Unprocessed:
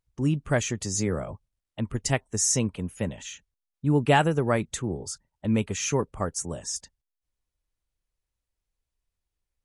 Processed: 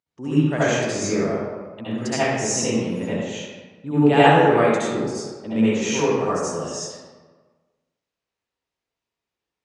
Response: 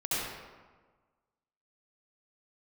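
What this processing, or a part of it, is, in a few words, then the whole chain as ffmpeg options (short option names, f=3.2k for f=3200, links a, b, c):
supermarket ceiling speaker: -filter_complex "[0:a]highpass=210,lowpass=5.5k[a];[1:a]atrim=start_sample=2205[b];[a][b]afir=irnorm=-1:irlink=0"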